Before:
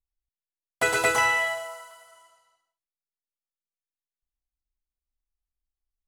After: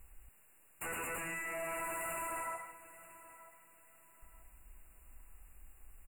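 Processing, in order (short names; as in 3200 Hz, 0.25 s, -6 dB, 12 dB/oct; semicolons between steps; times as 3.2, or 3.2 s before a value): compressor 16:1, threshold -59 dBFS, peak gain reduction 40.5 dB; sine folder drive 18 dB, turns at -45 dBFS; brick-wall FIR band-stop 2900–7000 Hz; on a send: feedback echo 0.931 s, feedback 28%, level -17 dB; on the sum: gain +9 dB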